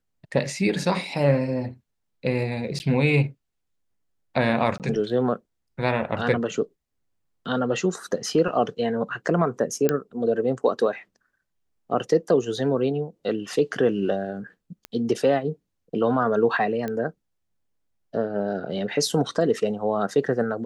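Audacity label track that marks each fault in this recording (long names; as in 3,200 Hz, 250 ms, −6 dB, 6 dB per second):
2.790000	2.800000	drop-out 9.8 ms
4.780000	4.800000	drop-out 18 ms
9.890000	9.890000	click −8 dBFS
14.850000	14.850000	click −19 dBFS
16.880000	16.880000	click −17 dBFS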